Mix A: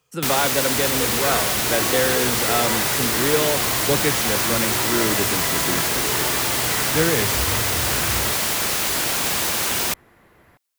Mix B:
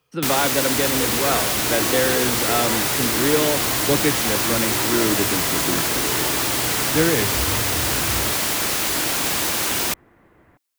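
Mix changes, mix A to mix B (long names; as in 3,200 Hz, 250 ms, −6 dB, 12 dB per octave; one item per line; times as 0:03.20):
speech: add Savitzky-Golay smoothing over 15 samples
second sound: add high-frequency loss of the air 370 metres
master: add parametric band 300 Hz +5.5 dB 0.35 octaves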